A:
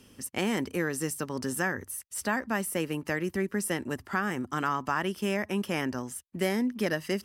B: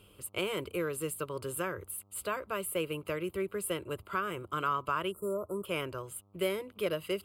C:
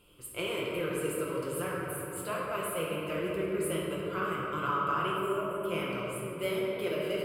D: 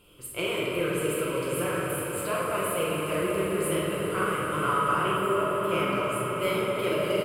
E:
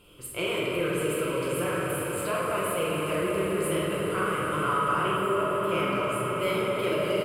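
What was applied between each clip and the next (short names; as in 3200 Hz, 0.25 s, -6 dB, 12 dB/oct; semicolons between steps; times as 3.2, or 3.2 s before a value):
spectral delete 5.11–5.65, 1400–7000 Hz; fixed phaser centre 1200 Hz, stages 8; buzz 100 Hz, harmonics 13, -66 dBFS -6 dB/oct
flange 1.2 Hz, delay 3.6 ms, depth 9.6 ms, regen -52%; shoebox room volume 220 m³, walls hard, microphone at 0.85 m
doubler 46 ms -6.5 dB; swelling echo 80 ms, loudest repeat 8, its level -15.5 dB; gain +4 dB
high shelf 11000 Hz -5 dB; in parallel at -1.5 dB: limiter -25 dBFS, peak gain reduction 10.5 dB; on the sum: gain -3 dB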